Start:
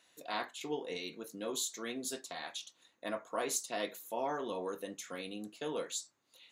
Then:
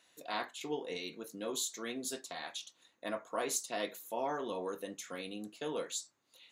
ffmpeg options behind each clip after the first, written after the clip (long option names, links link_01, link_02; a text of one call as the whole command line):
ffmpeg -i in.wav -af anull out.wav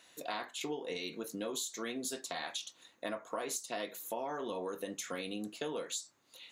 ffmpeg -i in.wav -af "acompressor=threshold=-42dB:ratio=6,volume=6.5dB" out.wav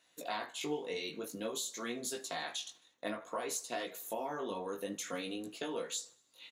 ffmpeg -i in.wav -af "flanger=delay=16.5:depth=3.9:speed=0.54,agate=range=-9dB:threshold=-57dB:ratio=16:detection=peak,aecho=1:1:78|156|234|312:0.0708|0.0382|0.0206|0.0111,volume=3dB" out.wav